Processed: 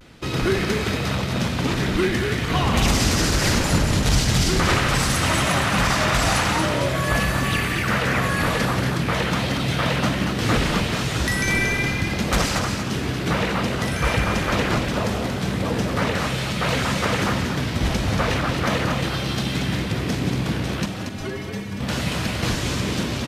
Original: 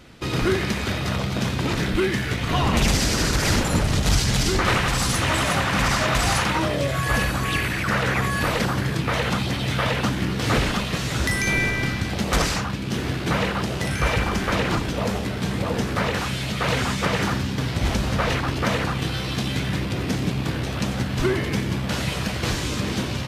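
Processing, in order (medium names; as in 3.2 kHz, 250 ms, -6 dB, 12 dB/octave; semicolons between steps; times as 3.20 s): 20.85–21.81 s: inharmonic resonator 94 Hz, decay 0.22 s, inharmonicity 0.008; vibrato 0.43 Hz 35 cents; frequency-shifting echo 232 ms, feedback 34%, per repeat +42 Hz, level -6 dB; reverberation, pre-delay 120 ms, DRR 14 dB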